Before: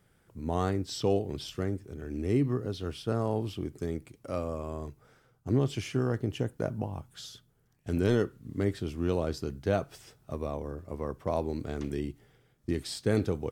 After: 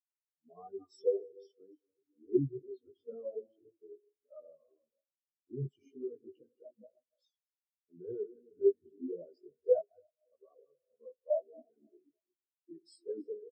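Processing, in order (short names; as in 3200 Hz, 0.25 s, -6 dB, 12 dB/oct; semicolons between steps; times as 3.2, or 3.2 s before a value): regenerating reverse delay 0.147 s, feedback 70%, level -8.5 dB; HPF 58 Hz 12 dB/oct; RIAA curve recording; notch 890 Hz, Q 5.7; sample leveller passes 2; chorus voices 4, 0.42 Hz, delay 17 ms, depth 4.9 ms; speakerphone echo 0.16 s, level -10 dB; reverb RT60 0.45 s, pre-delay 90 ms, DRR 17 dB; spectral expander 4:1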